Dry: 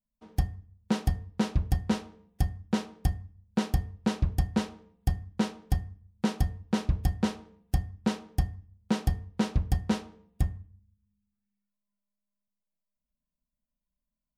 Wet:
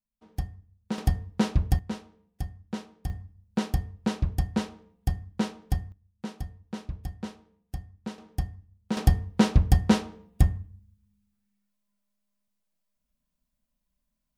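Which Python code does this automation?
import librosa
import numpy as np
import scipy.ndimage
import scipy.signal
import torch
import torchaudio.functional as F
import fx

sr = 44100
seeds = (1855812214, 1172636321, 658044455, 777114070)

y = fx.gain(x, sr, db=fx.steps((0.0, -4.5), (0.98, 3.0), (1.79, -6.5), (3.1, 0.0), (5.92, -9.0), (8.18, -2.5), (8.97, 7.0)))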